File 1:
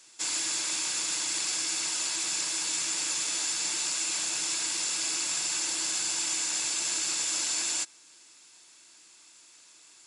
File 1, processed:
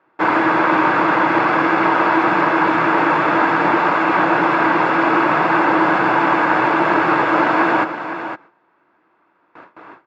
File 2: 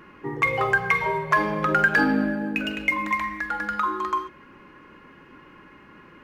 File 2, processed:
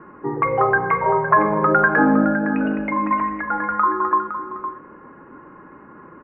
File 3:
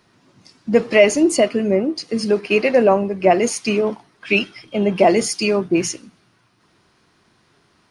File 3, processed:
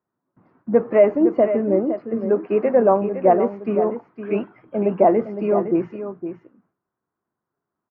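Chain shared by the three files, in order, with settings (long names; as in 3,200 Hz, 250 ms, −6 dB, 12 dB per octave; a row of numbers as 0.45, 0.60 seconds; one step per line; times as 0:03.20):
noise gate with hold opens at −43 dBFS
low-pass filter 1,400 Hz 24 dB per octave
low-shelf EQ 120 Hz −10 dB
on a send: single-tap delay 511 ms −10 dB
on the sum: normalise the peak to −2 dBFS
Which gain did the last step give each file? +31.0, +7.5, −0.5 decibels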